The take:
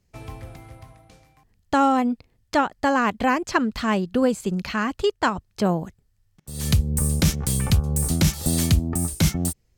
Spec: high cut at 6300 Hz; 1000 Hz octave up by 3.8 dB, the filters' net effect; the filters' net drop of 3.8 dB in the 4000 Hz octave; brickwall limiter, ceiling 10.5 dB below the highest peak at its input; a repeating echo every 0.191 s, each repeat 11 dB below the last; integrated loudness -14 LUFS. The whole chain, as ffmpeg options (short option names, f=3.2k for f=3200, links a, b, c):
-af "lowpass=6.3k,equalizer=f=1k:t=o:g=5,equalizer=f=4k:t=o:g=-4.5,alimiter=limit=-15.5dB:level=0:latency=1,aecho=1:1:191|382|573:0.282|0.0789|0.0221,volume=11.5dB"